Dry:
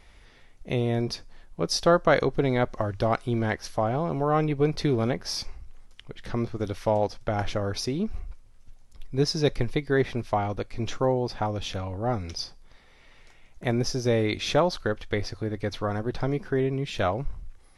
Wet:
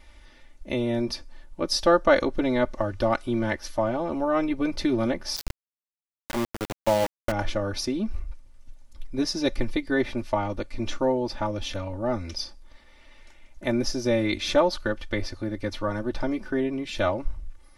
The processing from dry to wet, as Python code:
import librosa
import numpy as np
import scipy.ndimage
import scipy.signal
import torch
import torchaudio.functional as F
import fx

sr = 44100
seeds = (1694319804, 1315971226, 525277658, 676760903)

y = x + 0.9 * np.pad(x, (int(3.4 * sr / 1000.0), 0))[:len(x)]
y = fx.sample_gate(y, sr, floor_db=-23.0, at=(5.36, 7.32))
y = y * 10.0 ** (-1.5 / 20.0)